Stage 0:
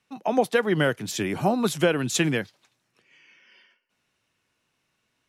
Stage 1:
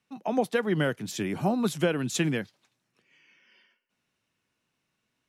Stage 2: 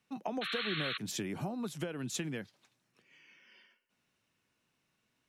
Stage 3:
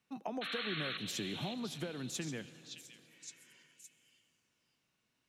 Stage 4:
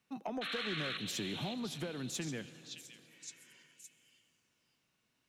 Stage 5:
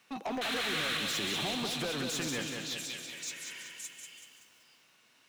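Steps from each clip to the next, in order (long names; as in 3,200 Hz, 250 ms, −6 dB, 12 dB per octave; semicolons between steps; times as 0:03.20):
parametric band 200 Hz +4.5 dB 1.3 octaves; level −5.5 dB
downward compressor 16 to 1, threshold −34 dBFS, peak gain reduction 16 dB; sound drawn into the spectrogram noise, 0:00.41–0:00.98, 1,100–4,300 Hz −38 dBFS
echo through a band-pass that steps 566 ms, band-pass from 3,700 Hz, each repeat 0.7 octaves, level −3 dB; on a send at −15.5 dB: convolution reverb RT60 3.3 s, pre-delay 73 ms; on the sum: level −3 dB
soft clipping −30 dBFS, distortion −21 dB; level +1.5 dB
mid-hump overdrive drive 22 dB, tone 7,800 Hz, clips at −29 dBFS; feedback echo at a low word length 190 ms, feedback 55%, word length 10 bits, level −5 dB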